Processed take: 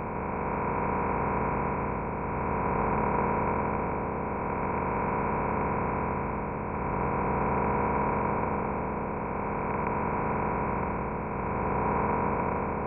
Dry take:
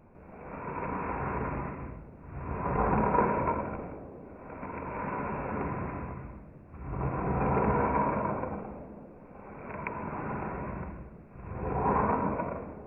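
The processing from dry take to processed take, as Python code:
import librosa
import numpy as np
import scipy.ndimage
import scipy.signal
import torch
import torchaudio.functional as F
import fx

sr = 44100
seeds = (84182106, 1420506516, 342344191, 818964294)

y = fx.bin_compress(x, sr, power=0.2)
y = F.gain(torch.from_numpy(y), -6.5).numpy()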